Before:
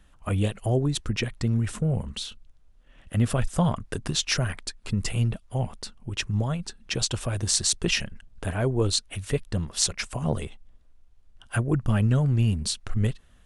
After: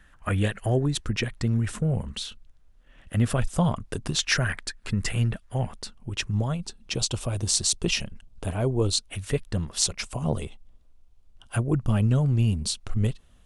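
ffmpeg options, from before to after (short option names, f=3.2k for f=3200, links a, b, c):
-af "asetnsamples=n=441:p=0,asendcmd='0.85 equalizer g 2.5;3.4 equalizer g -3.5;4.19 equalizer g 8.5;5.73 equalizer g -0.5;6.53 equalizer g -8.5;9.1 equalizer g 0.5;9.78 equalizer g -6',equalizer=f=1.7k:t=o:w=0.63:g=12"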